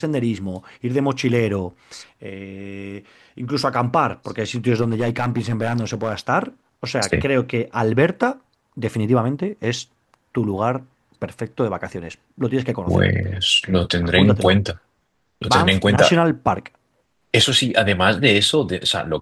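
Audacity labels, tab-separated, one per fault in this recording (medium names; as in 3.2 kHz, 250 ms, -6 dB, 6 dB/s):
4.810000	6.150000	clipped -14.5 dBFS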